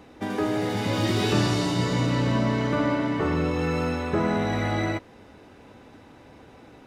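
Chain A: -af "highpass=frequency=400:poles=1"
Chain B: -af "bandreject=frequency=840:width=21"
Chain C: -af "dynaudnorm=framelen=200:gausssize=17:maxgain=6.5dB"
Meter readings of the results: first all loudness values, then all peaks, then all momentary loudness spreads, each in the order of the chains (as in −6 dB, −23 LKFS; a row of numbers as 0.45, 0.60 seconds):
−28.5, −25.0, −20.0 LKFS; −14.0, −11.5, −6.5 dBFS; 4, 4, 8 LU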